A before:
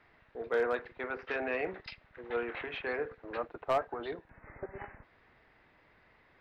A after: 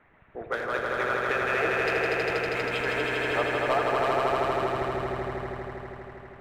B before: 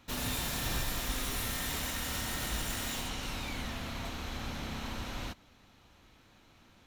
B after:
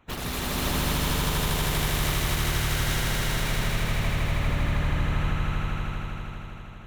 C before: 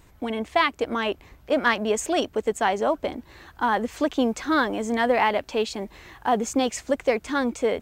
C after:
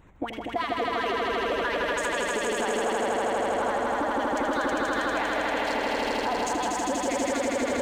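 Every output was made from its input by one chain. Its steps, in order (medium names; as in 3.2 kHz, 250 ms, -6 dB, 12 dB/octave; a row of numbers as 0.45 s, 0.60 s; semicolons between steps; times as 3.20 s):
local Wiener filter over 9 samples; compression 2.5:1, threshold -28 dBFS; harmonic-percussive split harmonic -18 dB; on a send: echo with a slow build-up 80 ms, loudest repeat 5, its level -3 dB; on the sum: peak limiter -24 dBFS; normalise loudness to -27 LUFS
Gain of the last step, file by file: +9.5 dB, +9.0 dB, +6.0 dB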